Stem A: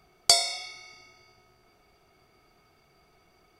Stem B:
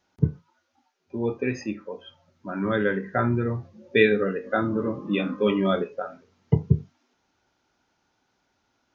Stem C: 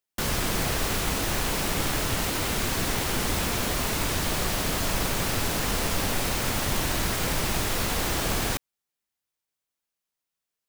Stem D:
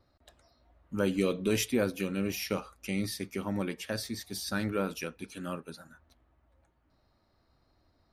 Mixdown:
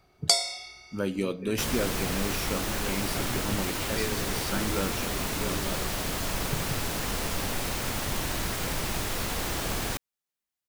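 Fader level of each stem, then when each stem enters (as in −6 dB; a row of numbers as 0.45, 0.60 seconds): −2.5, −15.5, −4.0, −1.0 decibels; 0.00, 0.00, 1.40, 0.00 seconds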